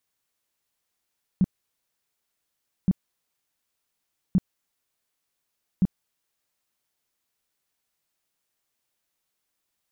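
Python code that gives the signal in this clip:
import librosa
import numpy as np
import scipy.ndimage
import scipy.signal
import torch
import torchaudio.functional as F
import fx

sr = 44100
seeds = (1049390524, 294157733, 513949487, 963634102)

y = fx.tone_burst(sr, hz=186.0, cycles=6, every_s=1.47, bursts=4, level_db=-15.0)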